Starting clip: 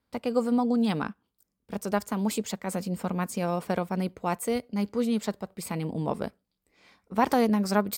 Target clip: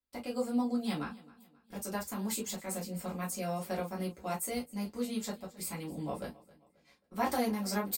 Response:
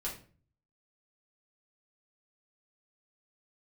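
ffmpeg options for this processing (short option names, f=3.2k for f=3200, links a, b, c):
-filter_complex "[0:a]aemphasis=mode=production:type=75kf,agate=range=-11dB:threshold=-53dB:ratio=16:detection=peak,highshelf=f=12k:g=-7.5,aecho=1:1:267|534|801:0.0891|0.0357|0.0143[a];[1:a]atrim=start_sample=2205,atrim=end_sample=3528,asetrate=61740,aresample=44100[b];[a][b]afir=irnorm=-1:irlink=0,volume=-7dB"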